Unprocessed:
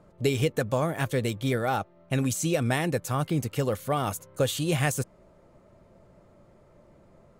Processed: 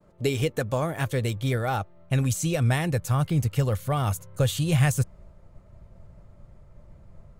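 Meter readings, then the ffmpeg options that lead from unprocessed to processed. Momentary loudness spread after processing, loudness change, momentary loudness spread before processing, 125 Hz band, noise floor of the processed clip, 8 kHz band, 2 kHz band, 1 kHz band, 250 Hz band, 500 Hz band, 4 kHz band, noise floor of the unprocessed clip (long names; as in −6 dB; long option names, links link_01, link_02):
6 LU, +2.0 dB, 4 LU, +5.5 dB, −53 dBFS, 0.0 dB, 0.0 dB, −0.5 dB, 0.0 dB, −1.5 dB, 0.0 dB, −58 dBFS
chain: -af "agate=range=-33dB:threshold=-54dB:ratio=3:detection=peak,asubboost=boost=7.5:cutoff=110"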